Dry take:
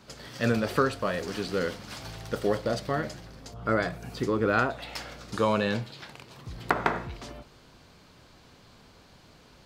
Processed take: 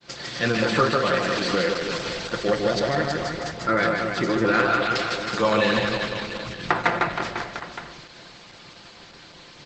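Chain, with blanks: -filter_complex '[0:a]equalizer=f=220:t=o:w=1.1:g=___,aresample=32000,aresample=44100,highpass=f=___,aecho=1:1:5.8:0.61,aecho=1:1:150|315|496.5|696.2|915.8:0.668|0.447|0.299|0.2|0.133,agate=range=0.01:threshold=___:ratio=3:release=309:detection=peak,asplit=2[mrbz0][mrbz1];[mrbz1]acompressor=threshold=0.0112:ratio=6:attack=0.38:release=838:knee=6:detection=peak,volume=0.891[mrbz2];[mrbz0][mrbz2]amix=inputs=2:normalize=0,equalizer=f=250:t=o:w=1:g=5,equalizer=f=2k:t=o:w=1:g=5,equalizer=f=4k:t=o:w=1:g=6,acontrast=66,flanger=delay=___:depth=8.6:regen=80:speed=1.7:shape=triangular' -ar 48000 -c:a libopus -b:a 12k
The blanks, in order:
-6, 76, 0.00355, 0.7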